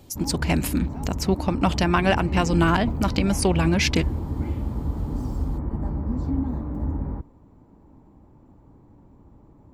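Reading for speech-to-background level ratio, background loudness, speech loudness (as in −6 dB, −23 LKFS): 5.5 dB, −29.0 LKFS, −23.5 LKFS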